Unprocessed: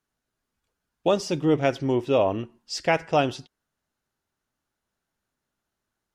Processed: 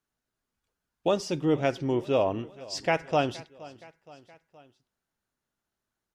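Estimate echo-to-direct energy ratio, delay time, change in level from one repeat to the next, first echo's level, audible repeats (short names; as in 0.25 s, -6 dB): -19.0 dB, 0.47 s, -4.5 dB, -20.5 dB, 3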